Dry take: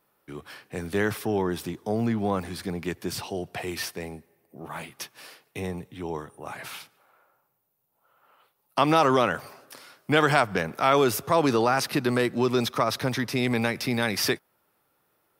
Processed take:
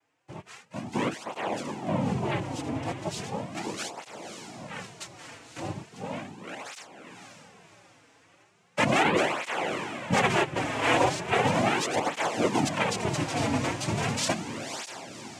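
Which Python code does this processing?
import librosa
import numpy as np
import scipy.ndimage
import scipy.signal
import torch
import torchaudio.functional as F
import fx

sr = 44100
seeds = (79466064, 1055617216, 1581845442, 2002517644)

y = fx.noise_vocoder(x, sr, seeds[0], bands=4)
y = fx.echo_diffused(y, sr, ms=553, feedback_pct=45, wet_db=-7.0)
y = fx.flanger_cancel(y, sr, hz=0.37, depth_ms=5.6)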